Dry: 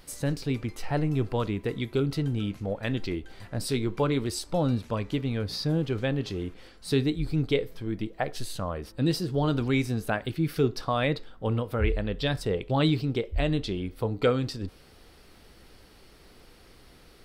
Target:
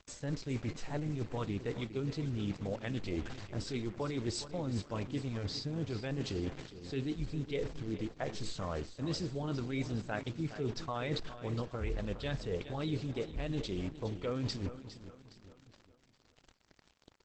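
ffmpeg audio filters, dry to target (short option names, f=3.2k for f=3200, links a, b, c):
-af "acrusher=bits=6:mix=0:aa=0.5,areverse,acompressor=threshold=-35dB:ratio=8,areverse,aecho=1:1:411|822|1233|1644|2055:0.251|0.116|0.0532|0.0244|0.0112,volume=2.5dB" -ar 48000 -c:a libopus -b:a 12k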